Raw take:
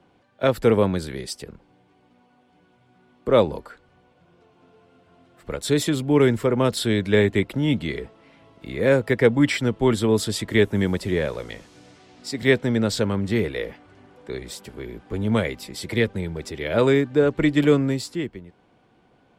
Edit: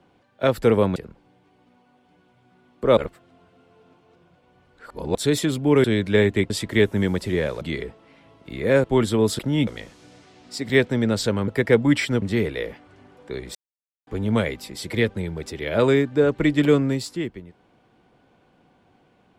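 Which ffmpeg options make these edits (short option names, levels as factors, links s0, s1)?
-filter_complex "[0:a]asplit=14[s0][s1][s2][s3][s4][s5][s6][s7][s8][s9][s10][s11][s12][s13];[s0]atrim=end=0.962[s14];[s1]atrim=start=1.398:end=3.412[s15];[s2]atrim=start=3.408:end=5.592,asetpts=PTS-STARTPTS,areverse[s16];[s3]atrim=start=5.588:end=6.282[s17];[s4]atrim=start=6.828:end=7.492[s18];[s5]atrim=start=10.288:end=11.402[s19];[s6]atrim=start=7.768:end=9.002[s20];[s7]atrim=start=9.738:end=10.292[s21];[s8]atrim=start=7.488:end=7.772[s22];[s9]atrim=start=11.398:end=13.212[s23];[s10]atrim=start=8.998:end=9.742[s24];[s11]atrim=start=13.208:end=14.54,asetpts=PTS-STARTPTS,afade=t=out:st=1.328:d=0.004:c=hsin[s25];[s12]atrim=start=14.54:end=15.06,asetpts=PTS-STARTPTS,volume=0[s26];[s13]atrim=start=15.06,asetpts=PTS-STARTPTS,afade=t=in:d=0.004:c=hsin[s27];[s14][s15]acrossfade=d=0.004:c1=hsin:c2=hsin[s28];[s28][s16]acrossfade=d=0.004:c1=hsin:c2=hsin[s29];[s29][s17]acrossfade=d=0.004:c1=hsin:c2=hsin[s30];[s30][s18]acrossfade=d=0.004:c1=hsin:c2=hsin[s31];[s31][s19]acrossfade=d=0.004:c1=hsin:c2=hsin[s32];[s32][s20]acrossfade=d=0.004:c1=hsin:c2=hsin[s33];[s33][s21]acrossfade=d=0.004:c1=hsin:c2=hsin[s34];[s34][s22]acrossfade=d=0.004:c1=hsin:c2=hsin[s35];[s35][s23]acrossfade=d=0.004:c1=hsin:c2=hsin[s36];[s36][s24]acrossfade=d=0.004:c1=hsin:c2=hsin[s37];[s25][s26][s27]concat=n=3:v=0:a=1[s38];[s37][s38]acrossfade=d=0.004:c1=hsin:c2=hsin"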